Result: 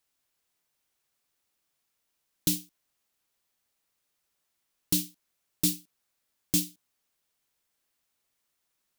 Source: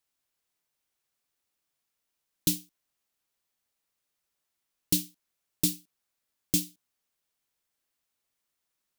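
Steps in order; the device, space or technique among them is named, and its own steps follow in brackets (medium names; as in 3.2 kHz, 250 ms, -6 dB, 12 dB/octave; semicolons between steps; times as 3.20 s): limiter into clipper (peak limiter -13.5 dBFS, peak gain reduction 4.5 dB; hard clipper -18 dBFS, distortion -21 dB); trim +3.5 dB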